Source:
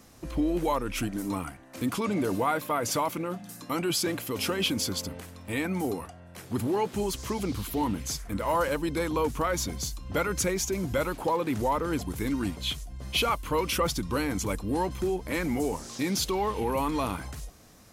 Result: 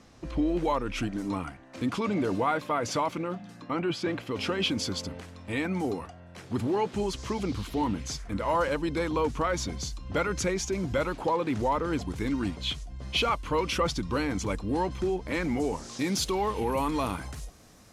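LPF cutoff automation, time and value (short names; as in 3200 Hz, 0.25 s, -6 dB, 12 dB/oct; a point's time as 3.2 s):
3.23 s 5400 Hz
3.77 s 2400 Hz
4.85 s 6100 Hz
15.64 s 6100 Hz
16.22 s 11000 Hz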